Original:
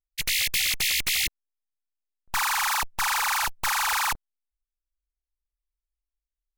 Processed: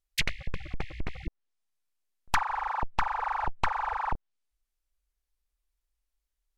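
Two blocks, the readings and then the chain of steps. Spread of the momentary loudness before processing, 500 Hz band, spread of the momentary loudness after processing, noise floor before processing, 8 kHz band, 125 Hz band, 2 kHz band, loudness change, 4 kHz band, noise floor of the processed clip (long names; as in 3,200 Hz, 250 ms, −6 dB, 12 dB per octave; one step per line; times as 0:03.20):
6 LU, +4.0 dB, 11 LU, below −85 dBFS, −19.5 dB, +6.0 dB, −9.0 dB, −8.5 dB, −13.5 dB, −84 dBFS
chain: treble cut that deepens with the level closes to 460 Hz, closed at −21.5 dBFS
level +6 dB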